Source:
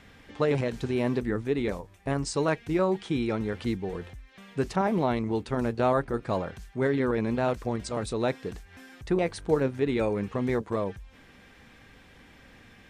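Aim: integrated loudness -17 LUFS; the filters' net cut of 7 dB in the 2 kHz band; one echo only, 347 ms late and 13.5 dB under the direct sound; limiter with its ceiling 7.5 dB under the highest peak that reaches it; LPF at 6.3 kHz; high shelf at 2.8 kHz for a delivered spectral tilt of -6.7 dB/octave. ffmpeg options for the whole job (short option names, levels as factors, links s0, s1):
-af "lowpass=6300,equalizer=f=2000:t=o:g=-7,highshelf=f=2800:g=-5.5,alimiter=limit=0.106:level=0:latency=1,aecho=1:1:347:0.211,volume=4.73"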